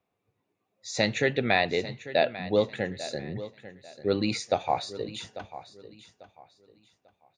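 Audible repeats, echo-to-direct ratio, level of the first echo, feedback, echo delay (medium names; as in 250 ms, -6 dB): 2, -14.5 dB, -15.0 dB, 28%, 844 ms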